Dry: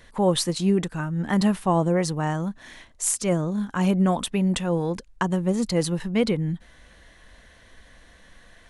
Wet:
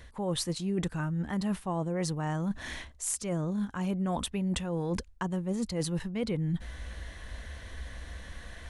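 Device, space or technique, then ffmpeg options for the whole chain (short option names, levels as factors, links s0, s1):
compression on the reversed sound: -af "areverse,acompressor=threshold=0.0178:ratio=6,areverse,equalizer=f=65:w=1.5:g=14,volume=1.68"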